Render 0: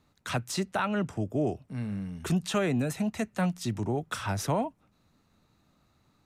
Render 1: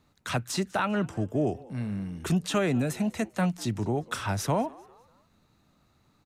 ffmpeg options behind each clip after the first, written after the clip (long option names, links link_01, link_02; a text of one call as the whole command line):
ffmpeg -i in.wav -filter_complex "[0:a]asplit=4[link_01][link_02][link_03][link_04];[link_02]adelay=198,afreqshift=120,volume=-23dB[link_05];[link_03]adelay=396,afreqshift=240,volume=-31.4dB[link_06];[link_04]adelay=594,afreqshift=360,volume=-39.8dB[link_07];[link_01][link_05][link_06][link_07]amix=inputs=4:normalize=0,volume=1.5dB" out.wav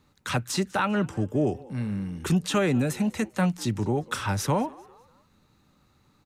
ffmpeg -i in.wav -af "asuperstop=centerf=670:order=4:qfactor=7.1,volume=2.5dB" out.wav